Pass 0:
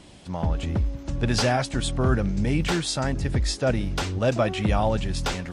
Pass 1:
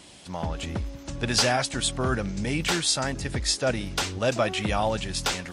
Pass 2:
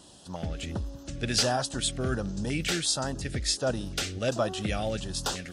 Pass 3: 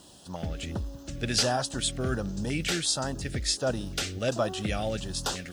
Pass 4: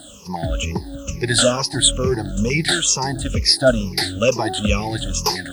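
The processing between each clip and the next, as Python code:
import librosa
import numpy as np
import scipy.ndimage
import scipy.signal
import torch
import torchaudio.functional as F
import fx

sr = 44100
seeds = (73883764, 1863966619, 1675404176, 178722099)

y1 = fx.tilt_eq(x, sr, slope=2.0)
y2 = fx.filter_lfo_notch(y1, sr, shape='square', hz=1.4, low_hz=970.0, high_hz=2200.0, q=1.1)
y2 = y2 * 10.0 ** (-2.5 / 20.0)
y3 = fx.dmg_noise_colour(y2, sr, seeds[0], colour='violet', level_db=-69.0)
y4 = fx.spec_ripple(y3, sr, per_octave=0.81, drift_hz=-2.2, depth_db=23)
y4 = y4 * 10.0 ** (5.5 / 20.0)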